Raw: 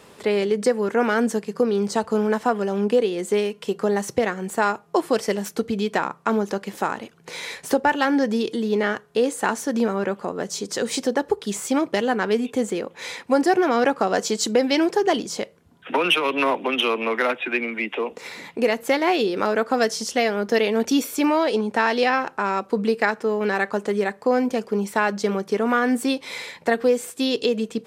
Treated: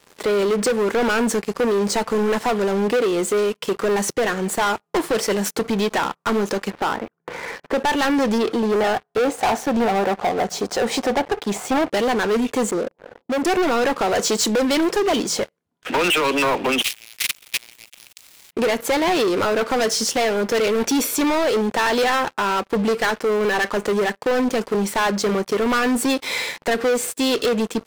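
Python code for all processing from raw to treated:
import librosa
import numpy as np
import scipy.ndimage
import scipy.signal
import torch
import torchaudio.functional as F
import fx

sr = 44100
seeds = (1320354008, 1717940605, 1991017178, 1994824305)

y = fx.chain(x, sr, fx.lowpass(hz=1800.0, slope=24),
    fx.quant_float(bits=6), at=(6.7, 7.78))
y = fx.chain(y, sr, fx.lowpass(hz=2300.0, slope=6),
    fx.peak_eq(hz=740.0, db=14.5, octaves=0.36), at=(8.38, 11.9))
y = fx.chain(y, sr, fx.cheby1_lowpass(hz=650.0, order=3),
    fx.peak_eq(hz=78.0, db=-9.5, octaves=0.73),
    fx.clip_hard(threshold_db=-26.5), at=(12.71, 13.45))
y = fx.spec_flatten(y, sr, power=0.29, at=(16.81, 18.51), fade=0.02)
y = fx.steep_highpass(y, sr, hz=2100.0, slope=36, at=(16.81, 18.51), fade=0.02)
y = fx.level_steps(y, sr, step_db=24, at=(16.81, 18.51), fade=0.02)
y = fx.highpass(y, sr, hz=190.0, slope=6)
y = fx.leveller(y, sr, passes=5)
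y = y * librosa.db_to_amplitude(-9.0)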